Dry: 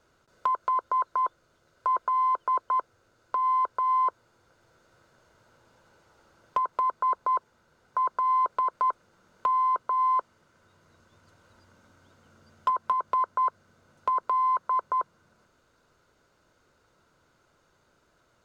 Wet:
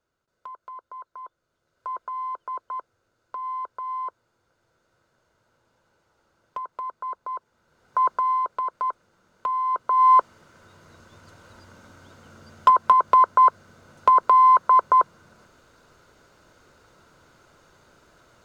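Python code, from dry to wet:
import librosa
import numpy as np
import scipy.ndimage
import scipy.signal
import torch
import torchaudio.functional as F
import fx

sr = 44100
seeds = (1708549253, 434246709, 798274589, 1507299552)

y = fx.gain(x, sr, db=fx.line((1.22, -14.0), (1.87, -6.5), (7.36, -6.5), (8.06, 6.0), (8.43, -1.0), (9.64, -1.0), (10.13, 10.0)))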